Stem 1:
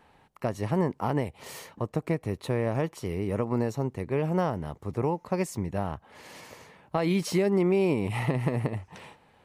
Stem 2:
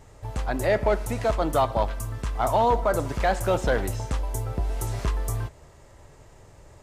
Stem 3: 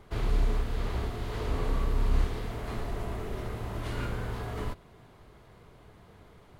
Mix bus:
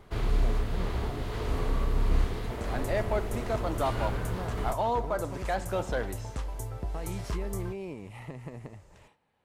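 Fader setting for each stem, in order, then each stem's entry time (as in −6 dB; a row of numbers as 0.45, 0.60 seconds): −14.5, −7.5, +0.5 decibels; 0.00, 2.25, 0.00 seconds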